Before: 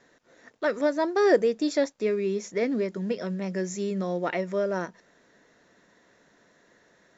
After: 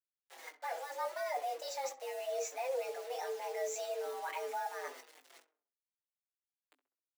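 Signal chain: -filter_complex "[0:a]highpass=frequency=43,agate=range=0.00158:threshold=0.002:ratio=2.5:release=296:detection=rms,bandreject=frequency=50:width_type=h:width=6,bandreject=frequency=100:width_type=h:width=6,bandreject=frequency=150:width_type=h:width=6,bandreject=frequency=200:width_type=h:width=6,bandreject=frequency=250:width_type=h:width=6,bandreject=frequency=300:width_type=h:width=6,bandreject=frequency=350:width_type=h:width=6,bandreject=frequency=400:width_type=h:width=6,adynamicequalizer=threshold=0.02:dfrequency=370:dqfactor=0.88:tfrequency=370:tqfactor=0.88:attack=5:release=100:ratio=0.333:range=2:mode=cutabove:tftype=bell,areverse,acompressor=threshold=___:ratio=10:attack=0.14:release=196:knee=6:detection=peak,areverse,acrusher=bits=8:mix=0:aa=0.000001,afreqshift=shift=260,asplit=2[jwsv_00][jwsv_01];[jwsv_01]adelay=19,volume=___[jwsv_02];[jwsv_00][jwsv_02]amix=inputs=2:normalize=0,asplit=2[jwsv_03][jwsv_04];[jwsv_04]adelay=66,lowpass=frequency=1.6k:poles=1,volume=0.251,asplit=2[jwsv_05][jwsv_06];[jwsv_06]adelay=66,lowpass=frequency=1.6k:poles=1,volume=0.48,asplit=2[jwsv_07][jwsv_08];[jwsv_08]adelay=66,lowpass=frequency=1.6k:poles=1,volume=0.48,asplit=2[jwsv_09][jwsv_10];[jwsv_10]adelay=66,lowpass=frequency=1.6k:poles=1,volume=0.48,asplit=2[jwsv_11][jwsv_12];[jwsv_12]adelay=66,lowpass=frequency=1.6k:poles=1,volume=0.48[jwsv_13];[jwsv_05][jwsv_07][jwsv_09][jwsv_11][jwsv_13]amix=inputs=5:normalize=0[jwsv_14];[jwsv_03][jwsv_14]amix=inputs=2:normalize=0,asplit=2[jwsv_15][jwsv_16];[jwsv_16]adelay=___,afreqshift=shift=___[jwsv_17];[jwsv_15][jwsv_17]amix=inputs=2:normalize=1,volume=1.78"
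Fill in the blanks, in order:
0.0178, 0.335, 5.6, -2.6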